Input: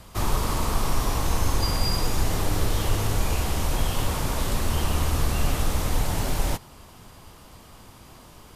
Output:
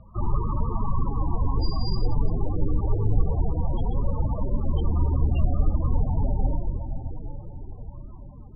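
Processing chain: reverberation RT60 5.2 s, pre-delay 20 ms, DRR 4 dB; loudest bins only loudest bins 16; steep low-pass 4.3 kHz

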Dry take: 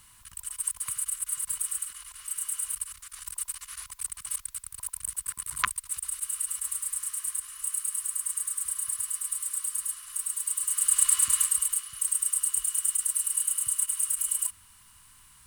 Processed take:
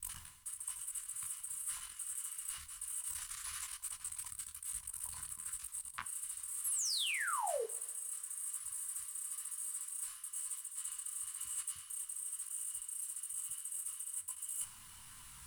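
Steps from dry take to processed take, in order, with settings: slices played last to first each 86 ms, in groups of 5; reverse; compression 12:1, threshold -40 dBFS, peak gain reduction 23 dB; reverse; painted sound fall, 6.64–7.65 s, 410–12000 Hz -39 dBFS; two-slope reverb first 0.38 s, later 1.8 s, from -21 dB, DRR 12.5 dB; detune thickener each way 36 cents; trim +5 dB

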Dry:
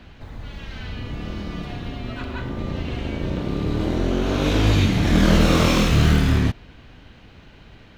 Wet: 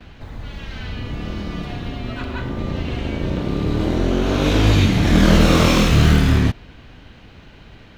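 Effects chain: gate with hold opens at -41 dBFS; trim +3 dB

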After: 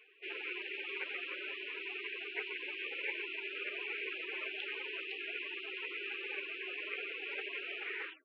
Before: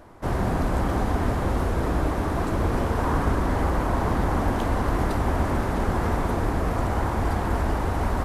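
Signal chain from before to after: tape stop on the ending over 0.48 s; mistuned SSB +200 Hz 440–2200 Hz; spectral gate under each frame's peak -25 dB weak; trim +15.5 dB

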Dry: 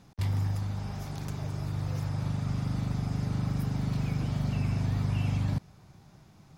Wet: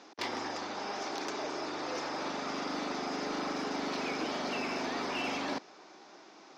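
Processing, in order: elliptic band-pass 320–5900 Hz, stop band 40 dB; in parallel at -8 dB: wavefolder -39 dBFS; on the sum: trim +6.5 dB

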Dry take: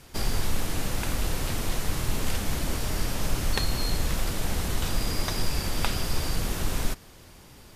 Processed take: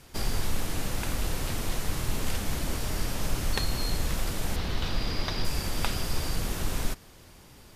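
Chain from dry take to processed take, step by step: 4.56–5.45 s: resonant high shelf 6 kHz -10 dB, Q 1.5; trim -2 dB

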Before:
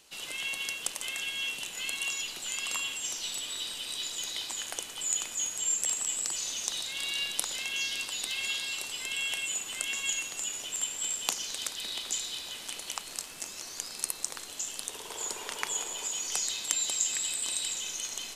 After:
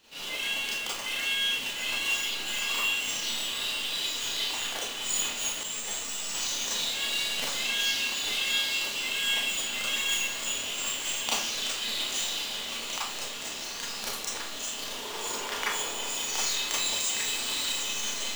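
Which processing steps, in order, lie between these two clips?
median filter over 5 samples; on a send: echo that smears into a reverb 1010 ms, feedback 67%, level -10.5 dB; on the sum: Schroeder reverb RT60 0.42 s, combs from 27 ms, DRR -8 dB; 5.63–6.35 s: three-phase chorus; trim -2 dB

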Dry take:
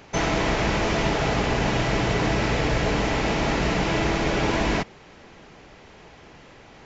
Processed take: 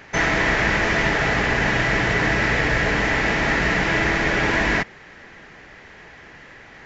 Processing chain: peaking EQ 1.8 kHz +13 dB 0.63 oct

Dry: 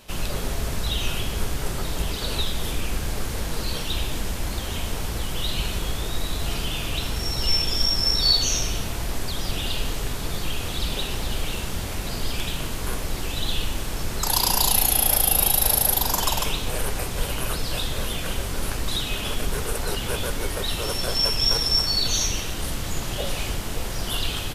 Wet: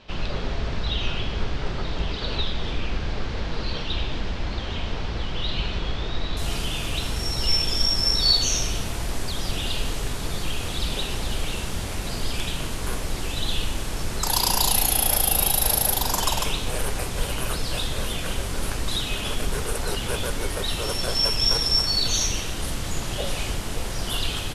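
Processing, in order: low-pass 4.6 kHz 24 dB/octave, from 6.37 s 12 kHz

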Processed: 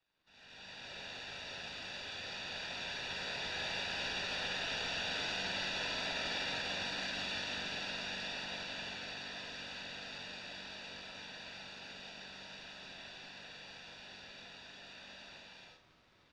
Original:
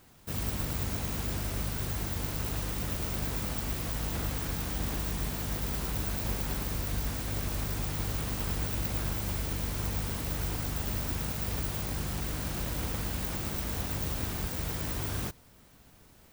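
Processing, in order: CVSD coder 64 kbps; Doppler pass-by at 5.28 s, 7 m/s, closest 3.8 m; band-pass filter 4.4 kHz, Q 1.4; comb 1 ms, depth 80%; crackle 260 per s -68 dBFS; level rider gain up to 14 dB; reverberation, pre-delay 3 ms, DRR -3.5 dB; peak limiter -27.5 dBFS, peak gain reduction 12 dB; distance through air 230 m; flutter echo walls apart 8 m, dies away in 0.32 s; frequency shift -340 Hz; trim +4.5 dB

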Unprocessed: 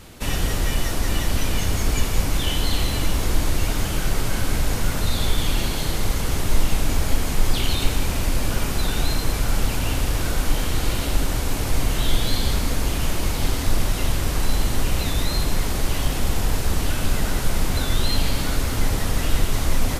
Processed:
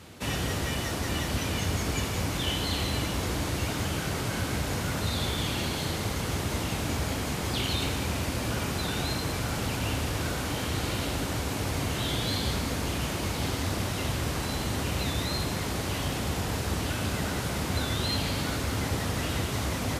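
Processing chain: high-pass 70 Hz 24 dB/octave; treble shelf 9.1 kHz -7.5 dB; trim -3 dB

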